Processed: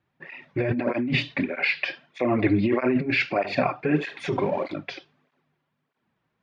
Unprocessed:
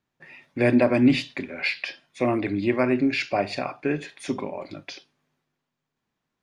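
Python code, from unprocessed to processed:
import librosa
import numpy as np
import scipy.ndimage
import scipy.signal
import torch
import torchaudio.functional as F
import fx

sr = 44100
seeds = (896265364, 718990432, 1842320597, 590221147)

y = fx.law_mismatch(x, sr, coded='mu', at=(3.96, 4.73))
y = fx.over_compress(y, sr, threshold_db=-25.0, ratio=-1.0)
y = scipy.signal.sosfilt(scipy.signal.butter(2, 2900.0, 'lowpass', fs=sr, output='sos'), y)
y = fx.flanger_cancel(y, sr, hz=1.6, depth_ms=4.9)
y = F.gain(torch.from_numpy(y), 6.0).numpy()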